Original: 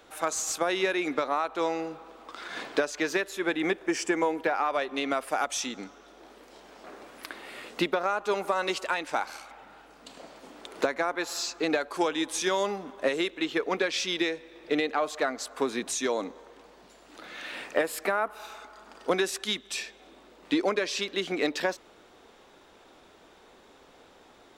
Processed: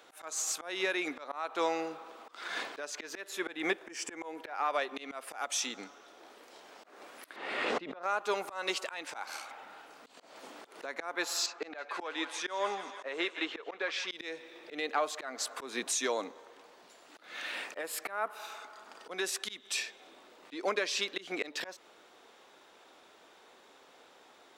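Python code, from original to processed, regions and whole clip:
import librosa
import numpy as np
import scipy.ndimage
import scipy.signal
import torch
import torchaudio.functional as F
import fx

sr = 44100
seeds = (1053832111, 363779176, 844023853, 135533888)

y = fx.chain(x, sr, fx.spacing_loss(db_at_10k=22),
    fx.pre_swell(db_per_s=41.0), at=(7.36, 8.03))
y = fx.chain(y, sr, fx.bandpass_q(hz=1000.0, q=0.54),
    fx.echo_wet_highpass(ms=161, feedback_pct=59, hz=1500.0, wet_db=-10), at=(11.46, 14.11))
y = fx.highpass(y, sr, hz=550.0, slope=6)
y = fx.rider(y, sr, range_db=3, speed_s=0.5)
y = fx.auto_swell(y, sr, attack_ms=198.0)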